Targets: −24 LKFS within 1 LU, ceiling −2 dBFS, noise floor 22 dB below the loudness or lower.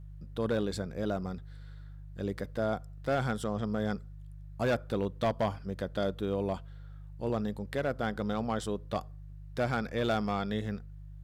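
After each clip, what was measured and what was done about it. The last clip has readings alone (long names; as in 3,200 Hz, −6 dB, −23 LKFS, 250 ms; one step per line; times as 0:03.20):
share of clipped samples 0.9%; peaks flattened at −23.0 dBFS; mains hum 50 Hz; hum harmonics up to 150 Hz; level of the hum −43 dBFS; integrated loudness −33.5 LKFS; sample peak −23.0 dBFS; target loudness −24.0 LKFS
→ clipped peaks rebuilt −23 dBFS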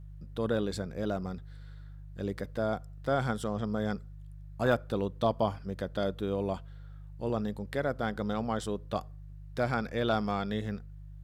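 share of clipped samples 0.0%; mains hum 50 Hz; hum harmonics up to 150 Hz; level of the hum −43 dBFS
→ hum removal 50 Hz, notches 3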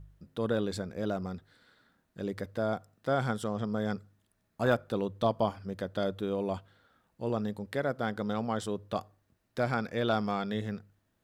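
mains hum none found; integrated loudness −33.5 LKFS; sample peak −14.0 dBFS; target loudness −24.0 LKFS
→ level +9.5 dB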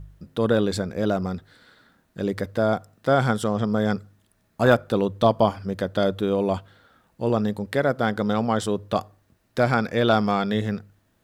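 integrated loudness −24.0 LKFS; sample peak −4.5 dBFS; background noise floor −66 dBFS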